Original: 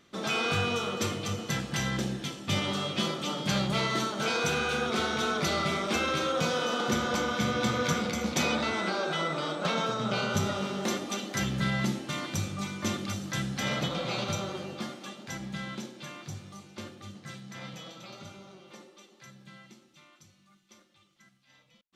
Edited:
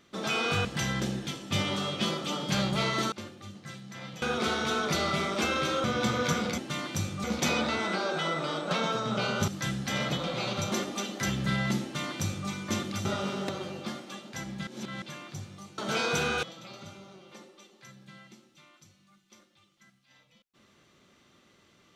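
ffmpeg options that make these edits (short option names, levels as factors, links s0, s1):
-filter_complex "[0:a]asplit=15[s0][s1][s2][s3][s4][s5][s6][s7][s8][s9][s10][s11][s12][s13][s14];[s0]atrim=end=0.652[s15];[s1]atrim=start=1.618:end=4.092[s16];[s2]atrim=start=16.718:end=17.822[s17];[s3]atrim=start=4.738:end=6.362[s18];[s4]atrim=start=7.438:end=8.182[s19];[s5]atrim=start=11.968:end=12.632[s20];[s6]atrim=start=8.178:end=10.422[s21];[s7]atrim=start=13.188:end=14.432[s22];[s8]atrim=start=10.858:end=13.192[s23];[s9]atrim=start=10.418:end=10.862[s24];[s10]atrim=start=14.428:end=15.612[s25];[s11]atrim=start=15.608:end=15.962,asetpts=PTS-STARTPTS,areverse[s26];[s12]atrim=start=15.958:end=16.722[s27];[s13]atrim=start=4.088:end=4.742[s28];[s14]atrim=start=17.818[s29];[s15][s16]acrossfade=d=0.004:c1=hsin:c2=hsin[s30];[s30][s17]acrossfade=d=0.004:c1=hsin:c2=hsin[s31];[s31][s18]acrossfade=d=0.004:c1=hsin:c2=hsin[s32];[s32][s19]acrossfade=d=0.004:c1=hsin:c2=hsin[s33];[s33][s20]acrossfade=d=0.004:c1=hsin:c2=hsin[s34];[s34][s21]acrossfade=d=0.004:c1=hsin:c2=hsin[s35];[s35][s22]acrossfade=d=0.004:c1=hsin:c2=hsin[s36];[s36][s23]acrossfade=d=0.004:c1=hsin:c2=hsin[s37];[s37][s24]acrossfade=d=0.004:c1=hsin:c2=hsin[s38];[s38][s25]acrossfade=d=0.004:c1=hsin:c2=hsin[s39];[s39][s26]acrossfade=d=0.004:c1=hsin:c2=hsin[s40];[s40][s27]acrossfade=d=0.004:c1=hsin:c2=hsin[s41];[s41][s28]acrossfade=d=0.004:c1=hsin:c2=hsin[s42];[s42][s29]acrossfade=d=0.004:c1=hsin:c2=hsin"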